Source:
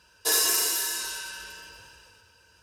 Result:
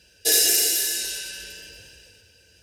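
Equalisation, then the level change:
Butterworth band-reject 1,100 Hz, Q 1
+5.0 dB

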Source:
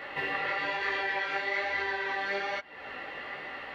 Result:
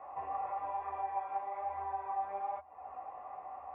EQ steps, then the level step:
formant resonators in series a
parametric band 78 Hz +15 dB 0.42 octaves
low-shelf EQ 99 Hz +10.5 dB
+7.0 dB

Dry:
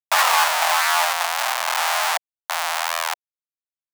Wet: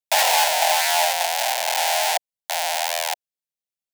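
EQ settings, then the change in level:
dynamic equaliser 770 Hz, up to +4 dB, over −30 dBFS, Q 1.7
phaser with its sweep stopped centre 320 Hz, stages 6
+2.5 dB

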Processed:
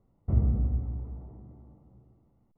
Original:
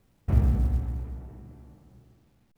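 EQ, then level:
Savitzky-Golay smoothing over 65 samples
dynamic equaliser 890 Hz, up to −6 dB, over −53 dBFS, Q 1.7
−2.5 dB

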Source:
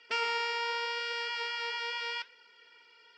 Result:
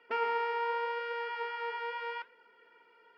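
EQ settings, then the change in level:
low-pass filter 1,200 Hz 12 dB per octave
+4.5 dB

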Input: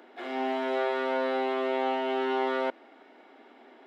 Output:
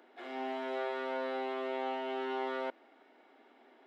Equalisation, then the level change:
low-shelf EQ 180 Hz −4.5 dB
−7.5 dB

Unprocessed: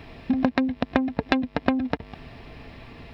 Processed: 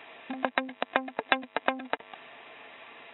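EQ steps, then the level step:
high-pass filter 660 Hz 12 dB per octave
linear-phase brick-wall low-pass 3,900 Hz
+1.0 dB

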